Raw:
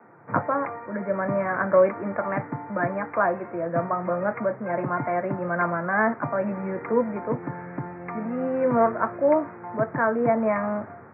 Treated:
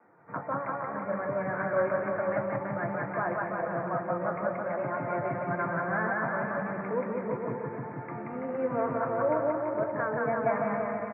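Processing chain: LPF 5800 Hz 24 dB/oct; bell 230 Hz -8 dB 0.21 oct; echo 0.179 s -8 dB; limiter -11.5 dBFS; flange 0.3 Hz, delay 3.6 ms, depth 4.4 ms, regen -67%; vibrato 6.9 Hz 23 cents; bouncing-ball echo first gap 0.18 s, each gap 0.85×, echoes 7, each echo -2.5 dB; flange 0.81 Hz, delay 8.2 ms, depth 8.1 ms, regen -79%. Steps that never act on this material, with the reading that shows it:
LPF 5800 Hz: input band ends at 2300 Hz

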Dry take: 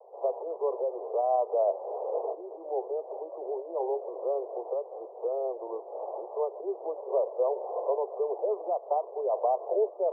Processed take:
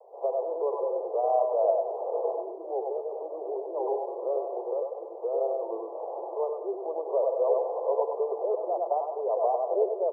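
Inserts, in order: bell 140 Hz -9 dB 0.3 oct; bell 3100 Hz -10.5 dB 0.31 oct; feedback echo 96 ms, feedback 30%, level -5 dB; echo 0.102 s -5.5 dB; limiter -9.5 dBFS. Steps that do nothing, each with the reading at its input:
bell 140 Hz: input band starts at 300 Hz; bell 3100 Hz: input band ends at 1100 Hz; limiter -9.5 dBFS: input peak -12.0 dBFS

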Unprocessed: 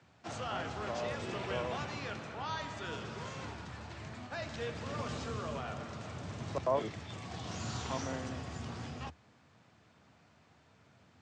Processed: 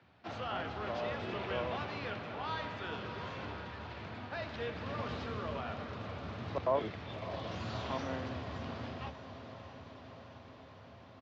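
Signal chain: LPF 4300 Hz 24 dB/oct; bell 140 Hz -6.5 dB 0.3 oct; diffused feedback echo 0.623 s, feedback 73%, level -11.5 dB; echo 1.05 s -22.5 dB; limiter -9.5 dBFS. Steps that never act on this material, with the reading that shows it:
limiter -9.5 dBFS: input peak -19.5 dBFS

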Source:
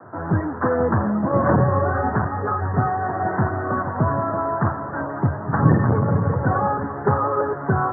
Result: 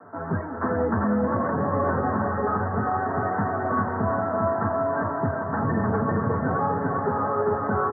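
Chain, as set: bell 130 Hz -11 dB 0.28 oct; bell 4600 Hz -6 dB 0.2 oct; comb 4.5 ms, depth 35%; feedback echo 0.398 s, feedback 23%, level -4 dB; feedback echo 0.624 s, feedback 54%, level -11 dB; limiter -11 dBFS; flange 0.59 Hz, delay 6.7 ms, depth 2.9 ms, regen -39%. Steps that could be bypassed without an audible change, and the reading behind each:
bell 4600 Hz: input band ends at 1900 Hz

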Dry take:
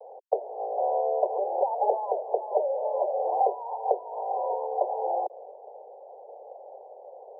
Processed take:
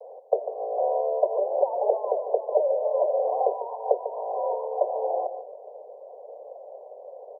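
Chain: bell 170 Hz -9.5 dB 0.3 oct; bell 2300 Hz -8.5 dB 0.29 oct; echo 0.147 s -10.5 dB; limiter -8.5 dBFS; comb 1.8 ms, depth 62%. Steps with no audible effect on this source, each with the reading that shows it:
bell 170 Hz: input band starts at 340 Hz; bell 2300 Hz: input band ends at 1100 Hz; limiter -8.5 dBFS: input peak -10.0 dBFS

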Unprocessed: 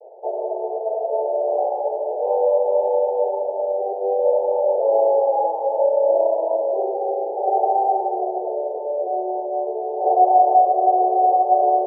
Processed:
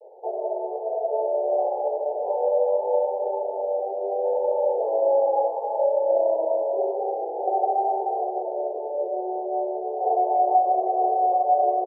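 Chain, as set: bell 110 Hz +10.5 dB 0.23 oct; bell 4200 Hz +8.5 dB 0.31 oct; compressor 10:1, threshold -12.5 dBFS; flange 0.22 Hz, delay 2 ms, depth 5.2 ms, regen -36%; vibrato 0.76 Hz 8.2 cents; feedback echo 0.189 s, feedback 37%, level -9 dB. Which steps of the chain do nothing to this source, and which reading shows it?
bell 110 Hz: input band starts at 320 Hz; bell 4200 Hz: input band ends at 960 Hz

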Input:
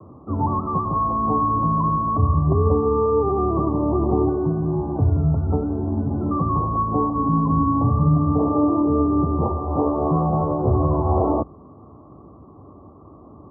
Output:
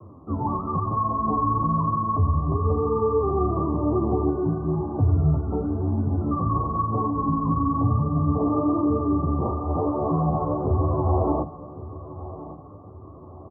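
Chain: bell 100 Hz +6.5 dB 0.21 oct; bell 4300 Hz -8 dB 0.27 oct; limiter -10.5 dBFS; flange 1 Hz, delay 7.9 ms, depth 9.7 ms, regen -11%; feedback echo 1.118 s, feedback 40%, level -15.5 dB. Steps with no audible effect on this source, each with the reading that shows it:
bell 4300 Hz: input band ends at 1200 Hz

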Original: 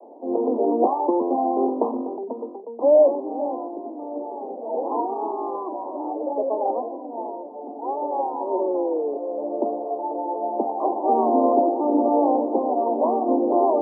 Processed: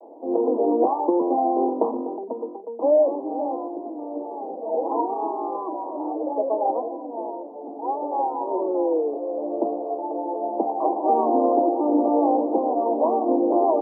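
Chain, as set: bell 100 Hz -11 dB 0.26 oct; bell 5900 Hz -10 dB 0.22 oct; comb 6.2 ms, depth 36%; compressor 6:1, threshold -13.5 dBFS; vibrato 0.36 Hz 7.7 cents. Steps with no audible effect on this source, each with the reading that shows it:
bell 100 Hz: input band starts at 200 Hz; bell 5900 Hz: input band ends at 1200 Hz

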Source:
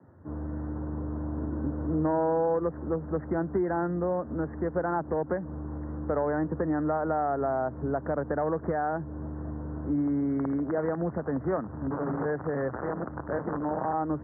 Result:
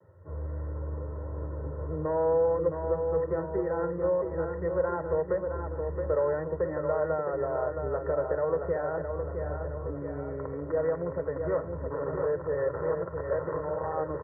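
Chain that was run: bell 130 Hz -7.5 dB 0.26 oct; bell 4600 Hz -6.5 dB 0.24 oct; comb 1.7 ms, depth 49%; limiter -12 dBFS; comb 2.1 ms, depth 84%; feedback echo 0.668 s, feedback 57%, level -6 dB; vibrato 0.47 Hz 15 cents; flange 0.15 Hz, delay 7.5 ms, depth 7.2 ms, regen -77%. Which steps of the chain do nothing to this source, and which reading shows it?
bell 4600 Hz: input band ends at 1700 Hz; limiter -12 dBFS: input peak -14.5 dBFS

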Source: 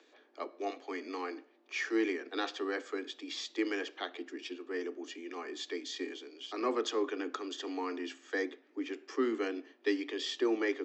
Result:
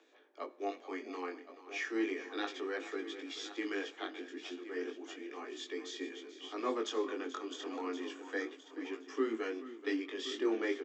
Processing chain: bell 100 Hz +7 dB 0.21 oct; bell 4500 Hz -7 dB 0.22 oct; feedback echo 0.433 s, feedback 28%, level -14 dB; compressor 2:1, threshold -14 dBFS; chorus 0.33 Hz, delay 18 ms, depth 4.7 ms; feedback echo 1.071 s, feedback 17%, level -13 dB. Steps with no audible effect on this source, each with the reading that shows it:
bell 100 Hz: input band starts at 210 Hz; compressor, threshold -14 dBFS: input peak -18.0 dBFS

